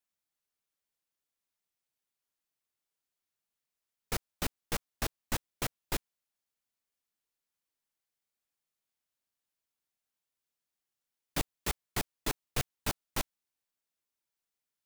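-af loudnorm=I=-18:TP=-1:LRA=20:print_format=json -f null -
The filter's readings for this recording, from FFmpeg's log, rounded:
"input_i" : "-37.6",
"input_tp" : "-16.3",
"input_lra" : "3.9",
"input_thresh" : "-47.6",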